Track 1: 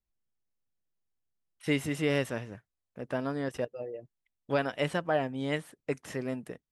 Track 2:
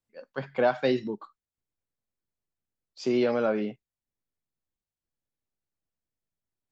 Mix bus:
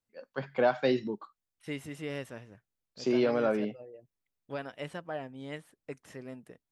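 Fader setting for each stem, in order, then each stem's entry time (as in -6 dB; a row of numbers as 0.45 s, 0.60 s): -9.5 dB, -2.0 dB; 0.00 s, 0.00 s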